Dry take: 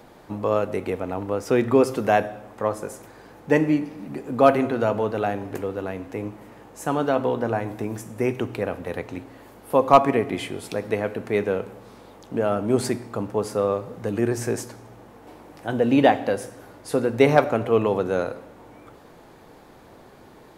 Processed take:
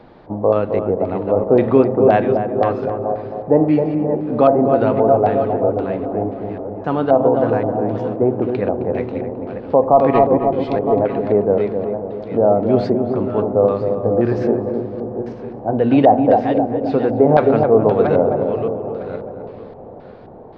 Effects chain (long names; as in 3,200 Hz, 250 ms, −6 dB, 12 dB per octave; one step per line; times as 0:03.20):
feedback delay that plays each chunk backwards 479 ms, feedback 42%, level −9 dB
auto-filter low-pass square 1.9 Hz 730–4,400 Hz
head-to-tape spacing loss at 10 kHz 36 dB
on a send: feedback echo with a low-pass in the loop 264 ms, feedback 62%, low-pass 850 Hz, level −5.5 dB
on the sum: boost into a limiter +7 dB
level −1 dB